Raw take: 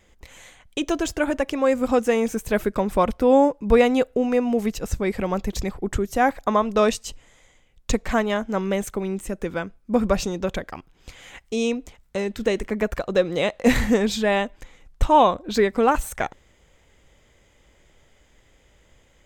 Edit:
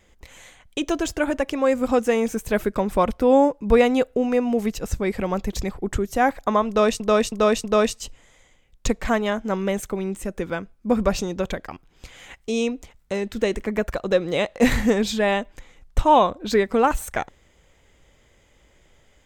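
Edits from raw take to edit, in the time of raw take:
6.68–7.00 s: loop, 4 plays

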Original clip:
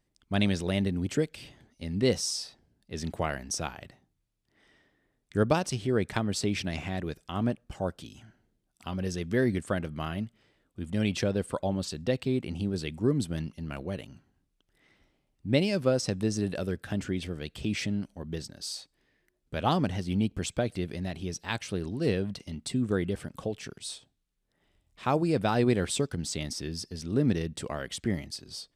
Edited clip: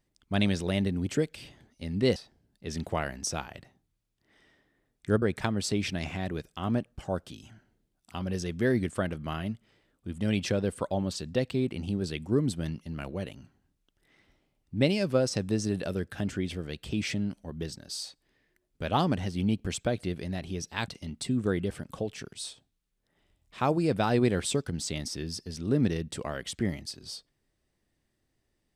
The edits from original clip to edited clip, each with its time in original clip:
2.16–2.43 s: delete
5.49–5.94 s: delete
21.60–22.33 s: delete

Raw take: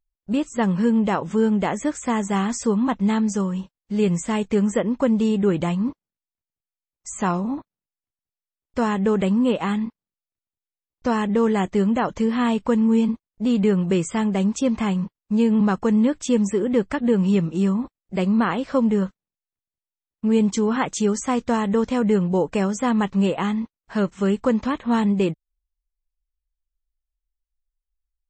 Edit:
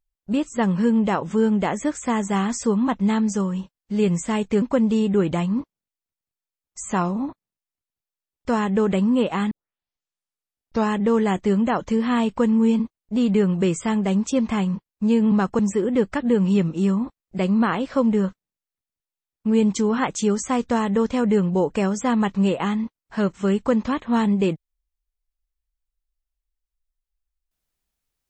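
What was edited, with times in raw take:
4.62–4.91 s: delete
9.80 s: tape start 1.40 s
15.88–16.37 s: delete

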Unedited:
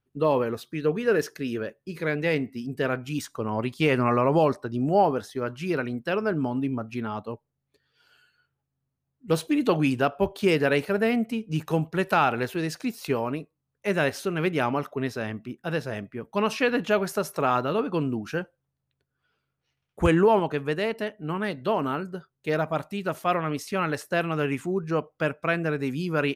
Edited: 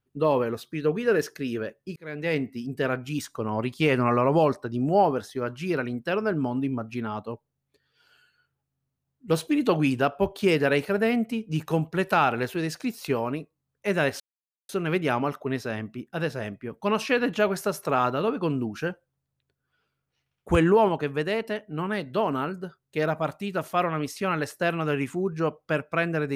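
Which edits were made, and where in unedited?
1.96–2.38 s: fade in
14.20 s: insert silence 0.49 s

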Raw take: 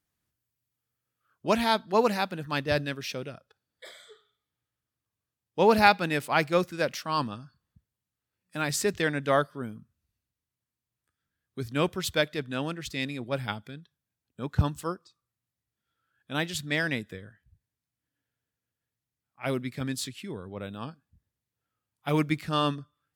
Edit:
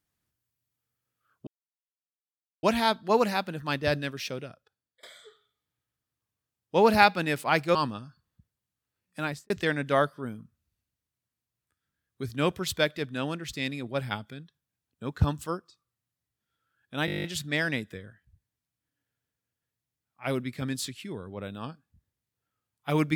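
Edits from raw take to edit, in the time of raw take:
1.47 s: insert silence 1.16 s
3.22–3.87 s: fade out, to -23.5 dB
6.59–7.12 s: delete
8.57–8.87 s: studio fade out
16.43 s: stutter 0.02 s, 10 plays

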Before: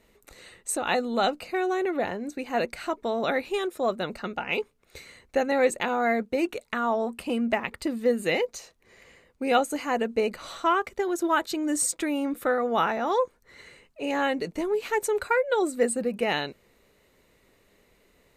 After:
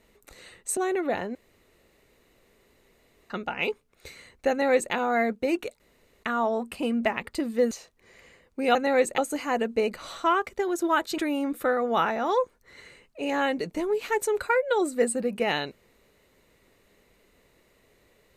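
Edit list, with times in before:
0.77–1.67 s: delete
2.25–4.20 s: room tone
5.40–5.83 s: copy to 9.58 s
6.70 s: insert room tone 0.43 s
8.18–8.54 s: delete
11.58–11.99 s: delete

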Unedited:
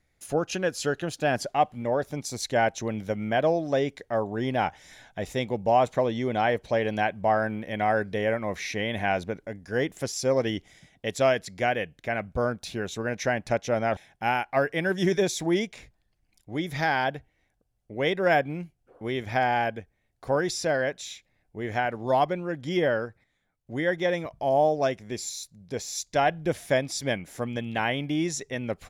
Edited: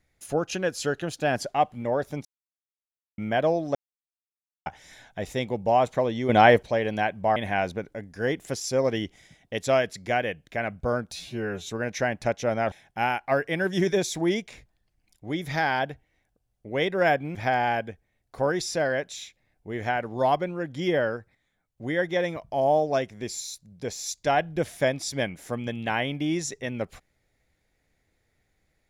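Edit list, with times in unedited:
2.25–3.18 s: mute
3.75–4.66 s: mute
6.29–6.63 s: gain +8.5 dB
7.36–8.88 s: delete
12.64–12.91 s: stretch 2×
18.60–19.24 s: delete

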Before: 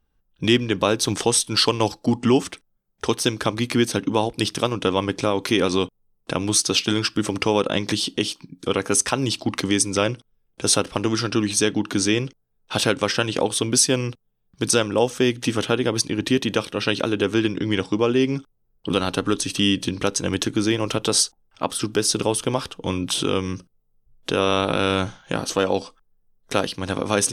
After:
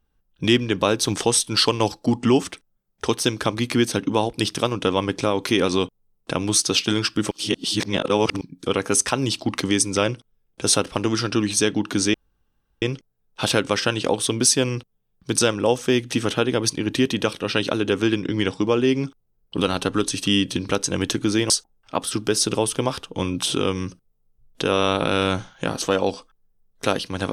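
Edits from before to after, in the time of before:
7.31–8.41 s: reverse
12.14 s: insert room tone 0.68 s
20.82–21.18 s: delete

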